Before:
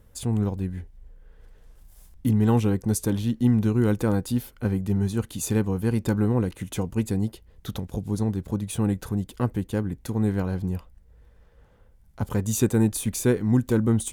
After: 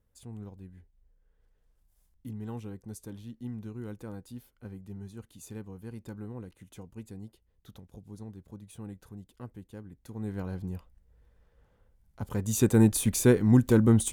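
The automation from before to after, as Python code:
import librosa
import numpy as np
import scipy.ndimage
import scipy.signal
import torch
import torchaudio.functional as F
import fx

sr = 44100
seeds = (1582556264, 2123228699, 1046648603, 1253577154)

y = fx.gain(x, sr, db=fx.line((9.9, -18.5), (10.46, -8.5), (12.22, -8.5), (12.8, 0.5)))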